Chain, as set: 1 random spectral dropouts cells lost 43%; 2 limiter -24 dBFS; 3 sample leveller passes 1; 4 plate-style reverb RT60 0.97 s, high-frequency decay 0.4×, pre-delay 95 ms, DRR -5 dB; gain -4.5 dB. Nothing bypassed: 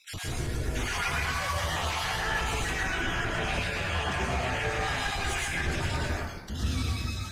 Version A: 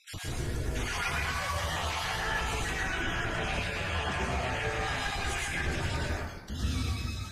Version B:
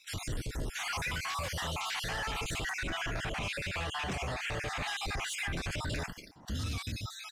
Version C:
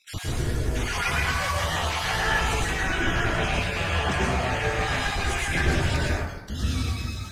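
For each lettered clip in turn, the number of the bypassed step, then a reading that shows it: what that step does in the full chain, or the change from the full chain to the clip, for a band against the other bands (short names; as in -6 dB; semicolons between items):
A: 3, loudness change -2.0 LU; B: 4, 4 kHz band +2.5 dB; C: 2, mean gain reduction 2.0 dB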